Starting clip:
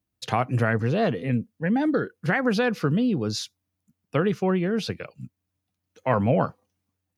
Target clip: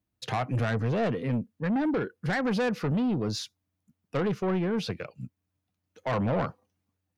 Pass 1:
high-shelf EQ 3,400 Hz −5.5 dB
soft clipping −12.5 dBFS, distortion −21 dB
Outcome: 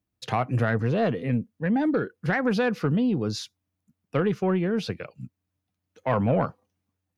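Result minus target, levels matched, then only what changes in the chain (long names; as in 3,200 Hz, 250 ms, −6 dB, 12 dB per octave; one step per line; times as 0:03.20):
soft clipping: distortion −11 dB
change: soft clipping −22.5 dBFS, distortion −10 dB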